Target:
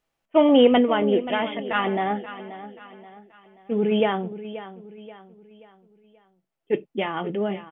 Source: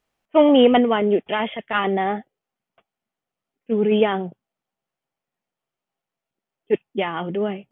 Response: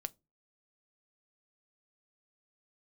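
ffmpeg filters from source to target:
-filter_complex "[0:a]aecho=1:1:531|1062|1593|2124:0.2|0.0838|0.0352|0.0148[link_01];[1:a]atrim=start_sample=2205,afade=type=out:start_time=0.15:duration=0.01,atrim=end_sample=7056[link_02];[link_01][link_02]afir=irnorm=-1:irlink=0"

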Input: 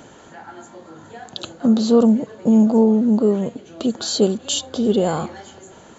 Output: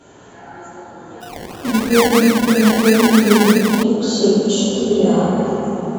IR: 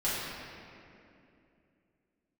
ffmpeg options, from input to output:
-filter_complex "[1:a]atrim=start_sample=2205,asetrate=22050,aresample=44100[link_01];[0:a][link_01]afir=irnorm=-1:irlink=0,asplit=3[link_02][link_03][link_04];[link_02]afade=type=out:start_time=1.2:duration=0.02[link_05];[link_03]acrusher=samples=28:mix=1:aa=0.000001:lfo=1:lforange=16.8:lforate=3,afade=type=in:start_time=1.2:duration=0.02,afade=type=out:start_time=3.82:duration=0.02[link_06];[link_04]afade=type=in:start_time=3.82:duration=0.02[link_07];[link_05][link_06][link_07]amix=inputs=3:normalize=0,volume=-10.5dB"

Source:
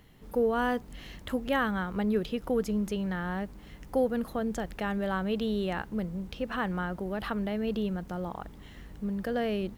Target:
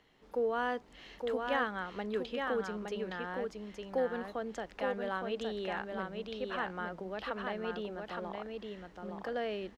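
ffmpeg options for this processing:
ffmpeg -i in.wav -filter_complex "[0:a]acrossover=split=300 6800:gain=0.2 1 0.1[link_01][link_02][link_03];[link_01][link_02][link_03]amix=inputs=3:normalize=0,asplit=2[link_04][link_05];[link_05]aecho=0:1:865:0.631[link_06];[link_04][link_06]amix=inputs=2:normalize=0,volume=-4dB" out.wav

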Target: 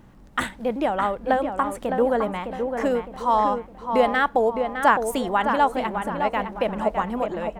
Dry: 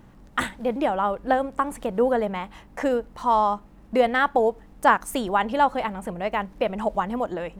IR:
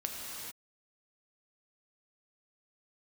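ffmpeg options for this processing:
-filter_complex "[0:a]asplit=2[link_01][link_02];[link_02]adelay=610,lowpass=frequency=2400:poles=1,volume=-6dB,asplit=2[link_03][link_04];[link_04]adelay=610,lowpass=frequency=2400:poles=1,volume=0.41,asplit=2[link_05][link_06];[link_06]adelay=610,lowpass=frequency=2400:poles=1,volume=0.41,asplit=2[link_07][link_08];[link_08]adelay=610,lowpass=frequency=2400:poles=1,volume=0.41,asplit=2[link_09][link_10];[link_10]adelay=610,lowpass=frequency=2400:poles=1,volume=0.41[link_11];[link_01][link_03][link_05][link_07][link_09][link_11]amix=inputs=6:normalize=0"

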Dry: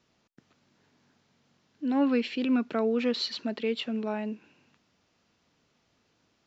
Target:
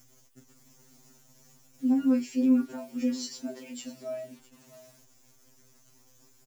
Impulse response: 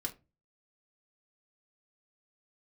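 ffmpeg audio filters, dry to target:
-filter_complex "[0:a]aexciter=amount=15.4:drive=9:freq=6100,acompressor=mode=upward:threshold=-40dB:ratio=2.5,tiltshelf=frequency=640:gain=7,asplit=2[link_01][link_02];[link_02]adelay=33,volume=-10dB[link_03];[link_01][link_03]amix=inputs=2:normalize=0,aecho=1:1:657:0.119,acrusher=bits=9:dc=4:mix=0:aa=0.000001,afftfilt=real='re*2.45*eq(mod(b,6),0)':imag='im*2.45*eq(mod(b,6),0)':win_size=2048:overlap=0.75,volume=-3.5dB"

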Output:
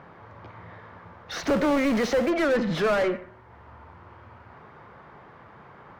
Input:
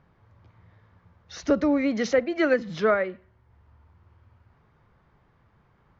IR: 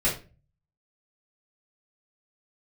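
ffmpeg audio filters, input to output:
-filter_complex "[0:a]asettb=1/sr,asplit=3[link_01][link_02][link_03];[link_01]atrim=end=1.424[link_04];[link_02]atrim=start=1.42:end=2.3,asetpts=PTS-STARTPTS,afade=type=in:duration=0.004:curve=qsin,afade=type=out:start_time=0.876:duration=0.004:curve=qsin,acrusher=bits=4:mode=log:mix=0:aa=0.000001[link_05];[link_03]atrim=start=2.296[link_06];[link_04][link_05]acrossfade=duration=0.004:curve1=hsin:curve2=qsin[link_07];[link_07][link_06]acrossfade=duration=0.004:curve1=qsin:curve2=hsin,asplit=2[link_08][link_09];[link_09]highpass=frequency=720:poles=1,volume=33dB,asoftclip=type=tanh:threshold=-11dB[link_10];[link_08][link_10]amix=inputs=2:normalize=0,lowpass=frequency=1100:poles=1,volume=-6dB,asplit=2[link_11][link_12];[1:a]atrim=start_sample=2205,adelay=82[link_13];[link_12][link_13]afir=irnorm=-1:irlink=0,volume=-32dB[link_14];[link_11][link_14]amix=inputs=2:normalize=0,volume=-4dB"

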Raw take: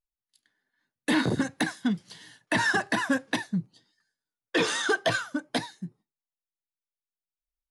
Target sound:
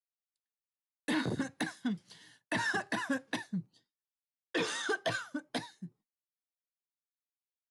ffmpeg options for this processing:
ffmpeg -i in.wav -af "agate=range=-33dB:threshold=-52dB:ratio=3:detection=peak,volume=-8dB" out.wav

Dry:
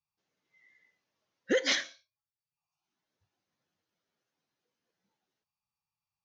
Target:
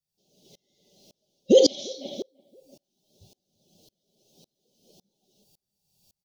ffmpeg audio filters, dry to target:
ffmpeg -i in.wav -filter_complex "[0:a]acrossover=split=2900[link_01][link_02];[link_02]acompressor=threshold=-45dB:ratio=4:attack=1:release=60[link_03];[link_01][link_03]amix=inputs=2:normalize=0,aecho=1:1:5.1:0.4,areverse,acompressor=threshold=-34dB:ratio=5,areverse,asuperstop=centerf=1500:order=8:qfactor=0.58,asplit=2[link_04][link_05];[link_05]adelay=339,lowpass=frequency=1200:poles=1,volume=-14.5dB,asplit=2[link_06][link_07];[link_07]adelay=339,lowpass=frequency=1200:poles=1,volume=0.28,asplit=2[link_08][link_09];[link_09]adelay=339,lowpass=frequency=1200:poles=1,volume=0.28[link_10];[link_04][link_06][link_08][link_10]amix=inputs=4:normalize=0,alimiter=level_in=32.5dB:limit=-1dB:release=50:level=0:latency=1,aeval=exprs='val(0)*pow(10,-31*if(lt(mod(-1.8*n/s,1),2*abs(-1.8)/1000),1-mod(-1.8*n/s,1)/(2*abs(-1.8)/1000),(mod(-1.8*n/s,1)-2*abs(-1.8)/1000)/(1-2*abs(-1.8)/1000))/20)':channel_layout=same" out.wav

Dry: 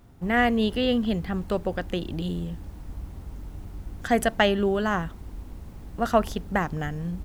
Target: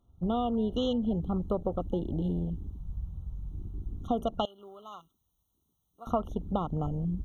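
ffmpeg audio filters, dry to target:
ffmpeg -i in.wav -filter_complex "[0:a]afwtdn=0.0224,asettb=1/sr,asplit=3[link_01][link_02][link_03];[link_01]atrim=end=4.454[link_04];[link_02]atrim=start=4.45:end=6.07,asetpts=PTS-STARTPTS,afade=type=in:duration=0.004:curve=qsin,afade=type=out:start_time=1.616:duration=0.004:curve=qsin,aderivative[link_05];[link_03]atrim=start=6.066[link_06];[link_04][link_05]acrossfade=duration=0.004:curve1=hsin:curve2=qsin[link_07];[link_07][link_06]acrossfade=duration=0.004:curve1=qsin:curve2=hsin,acompressor=threshold=-25dB:ratio=6,afftfilt=real='re*eq(mod(floor(b*sr/1024/1400),2),0)':imag='im*eq(mod(floor(b*sr/1024/1400),2),0)':win_size=1024:overlap=0.75" out.wav

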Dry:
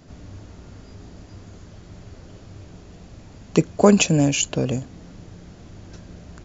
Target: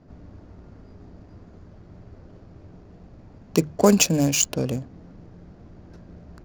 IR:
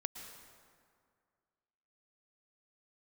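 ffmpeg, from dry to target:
-af "bandreject=frequency=50:width_type=h:width=6,bandreject=frequency=100:width_type=h:width=6,bandreject=frequency=150:width_type=h:width=6,adynamicsmooth=sensitivity=5.5:basefreq=1500,aexciter=amount=3.3:drive=2:freq=4400,volume=-2.5dB"

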